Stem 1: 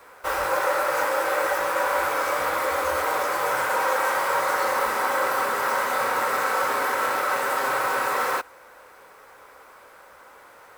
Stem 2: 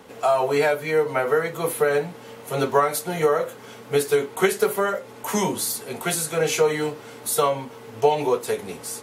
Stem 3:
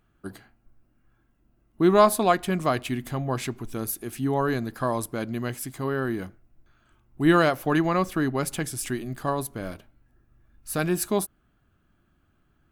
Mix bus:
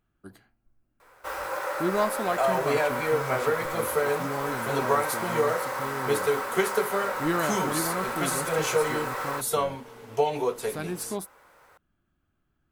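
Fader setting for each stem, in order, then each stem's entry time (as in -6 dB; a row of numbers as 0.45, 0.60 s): -8.0, -5.5, -8.5 dB; 1.00, 2.15, 0.00 s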